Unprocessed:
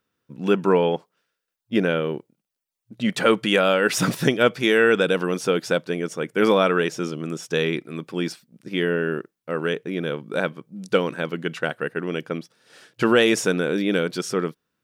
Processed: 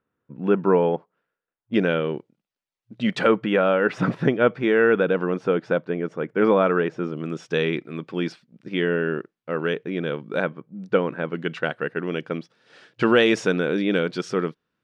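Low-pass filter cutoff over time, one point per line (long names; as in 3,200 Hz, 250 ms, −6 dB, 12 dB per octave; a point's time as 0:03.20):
1,600 Hz
from 0:01.74 4,200 Hz
from 0:03.27 1,700 Hz
from 0:07.17 3,600 Hz
from 0:10.44 1,900 Hz
from 0:11.35 4,100 Hz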